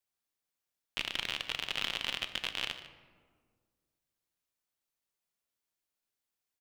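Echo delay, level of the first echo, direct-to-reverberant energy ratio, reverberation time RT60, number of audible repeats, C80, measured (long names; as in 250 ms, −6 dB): 148 ms, −16.0 dB, 8.5 dB, 1.8 s, 1, 11.0 dB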